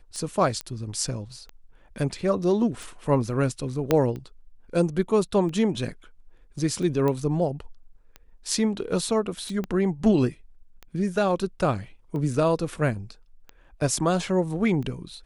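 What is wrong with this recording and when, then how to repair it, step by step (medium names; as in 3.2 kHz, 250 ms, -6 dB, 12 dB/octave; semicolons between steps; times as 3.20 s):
tick 45 rpm -25 dBFS
0.61 s: pop -15 dBFS
3.91 s: pop -7 dBFS
7.08 s: pop -15 dBFS
9.64 s: pop -19 dBFS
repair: de-click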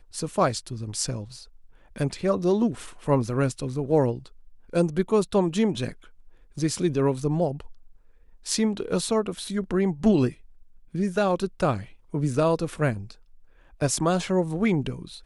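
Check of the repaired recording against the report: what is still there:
0.61 s: pop
3.91 s: pop
9.64 s: pop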